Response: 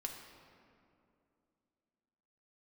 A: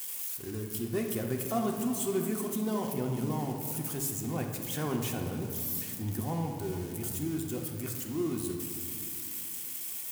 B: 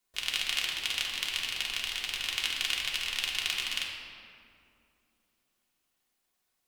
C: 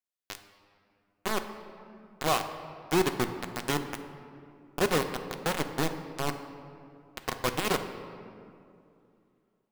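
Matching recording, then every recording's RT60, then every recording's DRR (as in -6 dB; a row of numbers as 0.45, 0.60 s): A; 2.6, 2.6, 2.6 s; 1.0, -3.0, 6.5 dB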